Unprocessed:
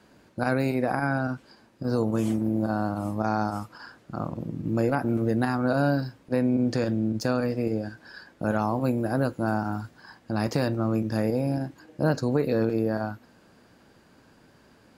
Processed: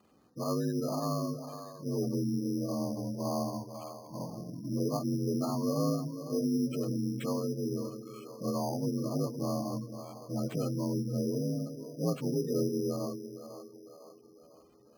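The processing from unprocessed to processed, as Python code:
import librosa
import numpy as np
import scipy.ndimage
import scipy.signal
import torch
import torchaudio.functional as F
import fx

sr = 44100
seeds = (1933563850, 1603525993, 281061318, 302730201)

y = fx.partial_stretch(x, sr, pct=85)
y = fx.echo_split(y, sr, split_hz=380.0, low_ms=198, high_ms=501, feedback_pct=52, wet_db=-10.0)
y = fx.spec_gate(y, sr, threshold_db=-20, keep='strong')
y = np.repeat(y[::8], 8)[:len(y)]
y = y * librosa.db_to_amplitude(-6.0)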